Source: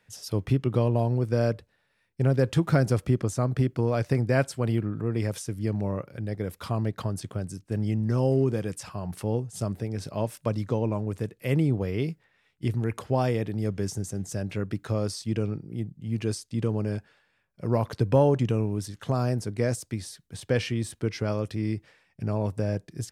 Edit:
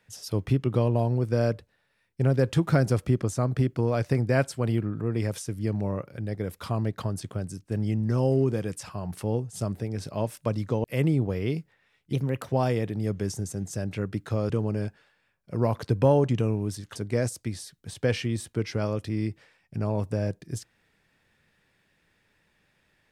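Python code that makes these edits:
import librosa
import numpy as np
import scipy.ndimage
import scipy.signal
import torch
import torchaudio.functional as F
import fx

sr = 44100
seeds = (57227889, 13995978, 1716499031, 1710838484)

y = fx.edit(x, sr, fx.cut(start_s=10.84, length_s=0.52),
    fx.speed_span(start_s=12.65, length_s=0.46, speed=1.16),
    fx.cut(start_s=15.08, length_s=1.52),
    fx.cut(start_s=19.06, length_s=0.36), tone=tone)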